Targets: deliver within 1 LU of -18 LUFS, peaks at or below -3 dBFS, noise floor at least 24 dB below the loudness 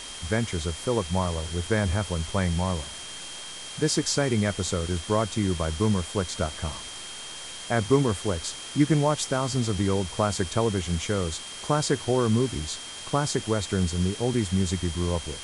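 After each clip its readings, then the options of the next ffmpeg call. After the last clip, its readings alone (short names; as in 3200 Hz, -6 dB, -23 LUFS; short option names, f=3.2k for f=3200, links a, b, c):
steady tone 3200 Hz; tone level -41 dBFS; noise floor -39 dBFS; noise floor target -51 dBFS; loudness -27.0 LUFS; peak -9.0 dBFS; loudness target -18.0 LUFS
-> -af "bandreject=f=3.2k:w=30"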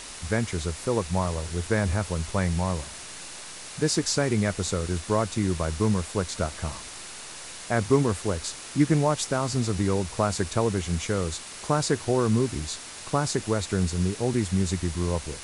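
steady tone none; noise floor -41 dBFS; noise floor target -51 dBFS
-> -af "afftdn=nr=10:nf=-41"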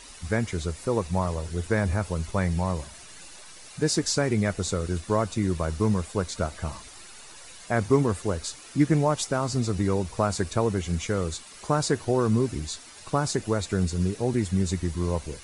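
noise floor -46 dBFS; noise floor target -51 dBFS
-> -af "afftdn=nr=6:nf=-46"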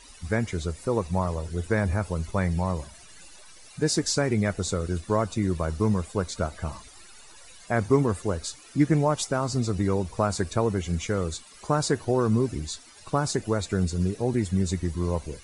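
noise floor -49 dBFS; noise floor target -51 dBFS
-> -af "afftdn=nr=6:nf=-49"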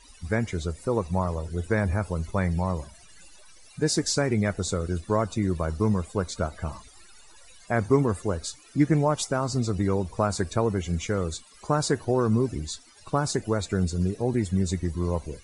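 noise floor -52 dBFS; loudness -27.0 LUFS; peak -9.0 dBFS; loudness target -18.0 LUFS
-> -af "volume=9dB,alimiter=limit=-3dB:level=0:latency=1"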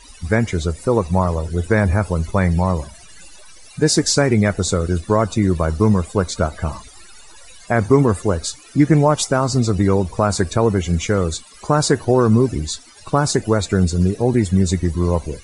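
loudness -18.0 LUFS; peak -3.0 dBFS; noise floor -43 dBFS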